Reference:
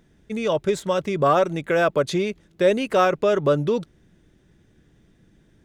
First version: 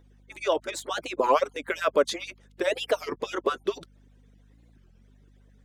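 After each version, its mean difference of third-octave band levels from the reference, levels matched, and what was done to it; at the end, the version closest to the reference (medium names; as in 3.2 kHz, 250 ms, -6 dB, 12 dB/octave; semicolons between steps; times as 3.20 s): 7.0 dB: harmonic-percussive separation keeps percussive; high-pass 250 Hz; hum 50 Hz, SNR 27 dB; warped record 33 1/3 rpm, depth 250 cents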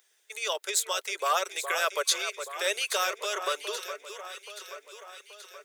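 16.0 dB: elliptic high-pass 400 Hz, stop band 60 dB; differentiator; harmonic-percussive split percussive +7 dB; echo whose repeats swap between lows and highs 414 ms, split 1.7 kHz, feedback 74%, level -8.5 dB; trim +5.5 dB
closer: first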